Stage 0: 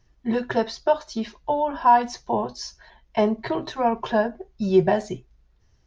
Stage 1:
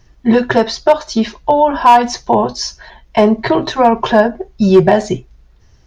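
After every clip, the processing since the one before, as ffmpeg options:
ffmpeg -i in.wav -filter_complex "[0:a]asplit=2[link_01][link_02];[link_02]alimiter=limit=-16dB:level=0:latency=1:release=146,volume=2.5dB[link_03];[link_01][link_03]amix=inputs=2:normalize=0,volume=7.5dB,asoftclip=hard,volume=-7.5dB,volume=6dB" out.wav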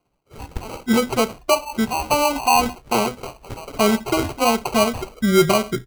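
ffmpeg -i in.wav -filter_complex "[0:a]acrossover=split=1200|3800[link_01][link_02][link_03];[link_02]adelay=60[link_04];[link_01]adelay=620[link_05];[link_05][link_04][link_03]amix=inputs=3:normalize=0,acrusher=samples=25:mix=1:aa=0.000001,volume=-6.5dB" out.wav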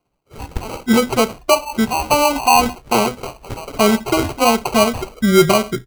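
ffmpeg -i in.wav -af "dynaudnorm=framelen=210:gausssize=3:maxgain=6dB,volume=-1dB" out.wav

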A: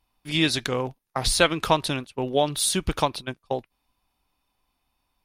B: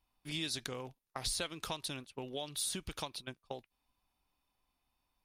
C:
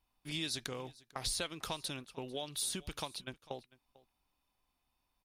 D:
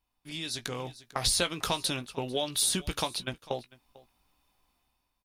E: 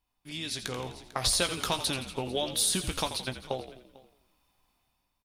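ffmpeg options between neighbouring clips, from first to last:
ffmpeg -i in.wav -filter_complex "[0:a]acrossover=split=2000|4000[link_01][link_02][link_03];[link_01]acompressor=threshold=-34dB:ratio=4[link_04];[link_02]acompressor=threshold=-41dB:ratio=4[link_05];[link_03]acompressor=threshold=-28dB:ratio=4[link_06];[link_04][link_05][link_06]amix=inputs=3:normalize=0,volume=-7.5dB" out.wav
ffmpeg -i in.wav -af "aecho=1:1:447:0.0794" out.wav
ffmpeg -i in.wav -filter_complex "[0:a]dynaudnorm=framelen=280:gausssize=5:maxgain=11dB,asplit=2[link_01][link_02];[link_02]adelay=17,volume=-10dB[link_03];[link_01][link_03]amix=inputs=2:normalize=0,volume=-1.5dB" out.wav
ffmpeg -i in.wav -filter_complex "[0:a]asplit=7[link_01][link_02][link_03][link_04][link_05][link_06][link_07];[link_02]adelay=85,afreqshift=-51,volume=-11dB[link_08];[link_03]adelay=170,afreqshift=-102,volume=-16.2dB[link_09];[link_04]adelay=255,afreqshift=-153,volume=-21.4dB[link_10];[link_05]adelay=340,afreqshift=-204,volume=-26.6dB[link_11];[link_06]adelay=425,afreqshift=-255,volume=-31.8dB[link_12];[link_07]adelay=510,afreqshift=-306,volume=-37dB[link_13];[link_01][link_08][link_09][link_10][link_11][link_12][link_13]amix=inputs=7:normalize=0" out.wav

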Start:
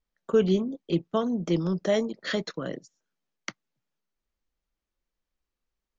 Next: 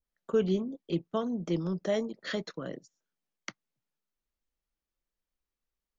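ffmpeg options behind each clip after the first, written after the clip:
ffmpeg -i in.wav -af "adynamicequalizer=threshold=0.00794:dfrequency=1600:dqfactor=0.7:tfrequency=1600:tqfactor=0.7:attack=5:release=100:ratio=0.375:range=2:mode=cutabove:tftype=highshelf,volume=-5dB" out.wav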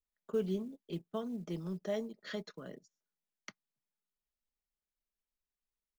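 ffmpeg -i in.wav -af "acrusher=bits=8:mode=log:mix=0:aa=0.000001,aecho=1:1:4.8:0.35,volume=-9dB" out.wav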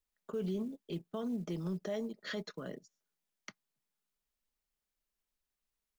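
ffmpeg -i in.wav -af "alimiter=level_in=9dB:limit=-24dB:level=0:latency=1:release=56,volume=-9dB,volume=4dB" out.wav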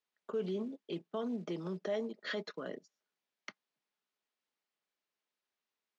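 ffmpeg -i in.wav -af "highpass=270,lowpass=4400,volume=3dB" out.wav

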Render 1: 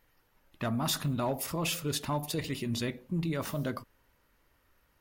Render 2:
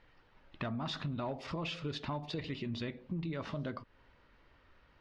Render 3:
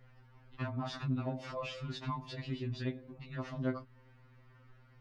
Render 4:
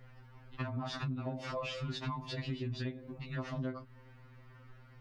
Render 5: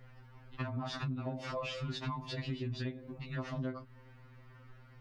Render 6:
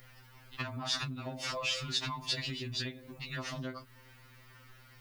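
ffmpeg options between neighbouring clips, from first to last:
ffmpeg -i in.wav -af "lowpass=frequency=4300:width=0.5412,lowpass=frequency=4300:width=1.3066,acompressor=threshold=-44dB:ratio=3,volume=5dB" out.wav
ffmpeg -i in.wav -af "aeval=exprs='val(0)+0.00112*(sin(2*PI*60*n/s)+sin(2*PI*2*60*n/s)/2+sin(2*PI*3*60*n/s)/3+sin(2*PI*4*60*n/s)/4+sin(2*PI*5*60*n/s)/5)':channel_layout=same,equalizer=frequency=3400:width_type=o:width=1:gain=-5,afftfilt=real='re*2.45*eq(mod(b,6),0)':imag='im*2.45*eq(mod(b,6),0)':win_size=2048:overlap=0.75,volume=2.5dB" out.wav
ffmpeg -i in.wav -af "acompressor=threshold=-38dB:ratio=12,volume=4.5dB" out.wav
ffmpeg -i in.wav -af anull out.wav
ffmpeg -i in.wav -af "crystalizer=i=9.5:c=0,volume=-3.5dB" out.wav

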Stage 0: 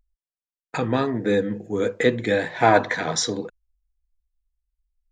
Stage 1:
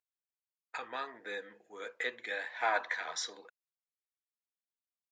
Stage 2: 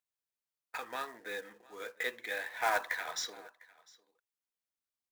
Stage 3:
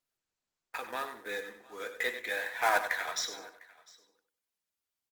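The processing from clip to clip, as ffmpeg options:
ffmpeg -i in.wav -af "highpass=1100,aemphasis=mode=reproduction:type=50kf,volume=-7.5dB" out.wav
ffmpeg -i in.wav -af "aecho=1:1:702:0.0668,acrusher=bits=3:mode=log:mix=0:aa=0.000001" out.wav
ffmpeg -i in.wav -filter_complex "[0:a]asplit=2[link_01][link_02];[link_02]aecho=0:1:96|192|288:0.316|0.0791|0.0198[link_03];[link_01][link_03]amix=inputs=2:normalize=0,volume=3dB" -ar 48000 -c:a libopus -b:a 24k out.opus

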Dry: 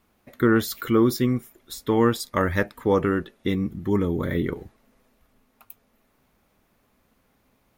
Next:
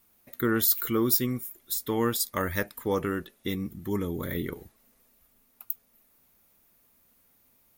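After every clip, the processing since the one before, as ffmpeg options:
ffmpeg -i in.wav -af "aemphasis=mode=production:type=75fm,volume=-6.5dB" out.wav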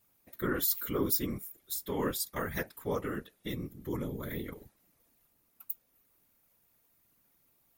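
ffmpeg -i in.wav -af "afftfilt=real='hypot(re,im)*cos(2*PI*random(0))':imag='hypot(re,im)*sin(2*PI*random(1))':win_size=512:overlap=0.75" out.wav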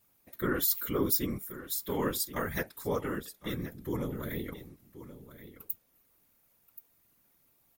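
ffmpeg -i in.wav -af "aecho=1:1:1078:0.2,volume=1.5dB" out.wav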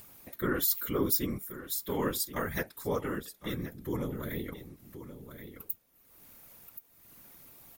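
ffmpeg -i in.wav -af "acompressor=mode=upward:threshold=-40dB:ratio=2.5" out.wav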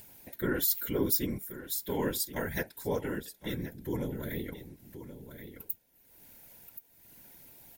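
ffmpeg -i in.wav -af "asuperstop=centerf=1200:order=4:qfactor=3.8" out.wav

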